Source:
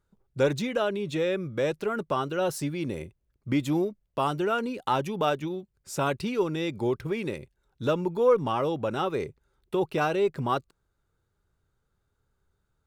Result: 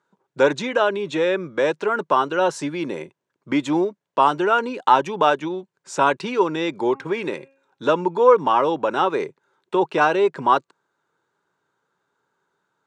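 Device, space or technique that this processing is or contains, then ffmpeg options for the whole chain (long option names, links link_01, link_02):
television speaker: -filter_complex "[0:a]highpass=frequency=190:width=0.5412,highpass=frequency=190:width=1.3066,equalizer=frequency=220:width_type=q:width=4:gain=-7,equalizer=frequency=960:width_type=q:width=4:gain=9,equalizer=frequency=1600:width_type=q:width=4:gain=5,equalizer=frequency=4900:width_type=q:width=4:gain=-4,lowpass=frequency=7600:width=0.5412,lowpass=frequency=7600:width=1.3066,asettb=1/sr,asplit=3[link_01][link_02][link_03];[link_01]atrim=end=6.764[link_04];[link_02]atrim=start=6.76:end=7.85,asetpts=PTS-STARTPTS,afade=type=in:duration=0.004:curve=qsin,afade=type=out:start_time=1.086:duration=0.004:curve=qsin,bandreject=frequency=271.6:width_type=h:width=4,bandreject=frequency=543.2:width_type=h:width=4,bandreject=frequency=814.8:width_type=h:width=4,bandreject=frequency=1086.4:width_type=h:width=4,bandreject=frequency=1358:width_type=h:width=4,bandreject=frequency=1629.6:width_type=h:width=4,bandreject=frequency=1901.2:width_type=h:width=4,bandreject=frequency=2172.8:width_type=h:width=4,bandreject=frequency=2444.4:width_type=h:width=4,bandreject=frequency=2716:width_type=h:width=4[link_05];[link_03]atrim=start=7.846[link_06];[link_04][link_05]acrossfade=duration=0.004:curve1=hsin:curve2=qsin[link_07];[link_07][link_06]acrossfade=duration=0.004:curve1=qsin:curve2=hsin,volume=6.5dB"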